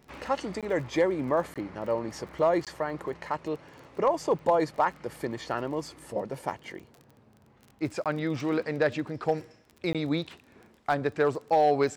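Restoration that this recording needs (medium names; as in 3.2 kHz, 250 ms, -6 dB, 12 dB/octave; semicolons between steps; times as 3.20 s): clip repair -15 dBFS; de-click; interpolate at 0.61/1.54/2.65/8.04/9.93 s, 17 ms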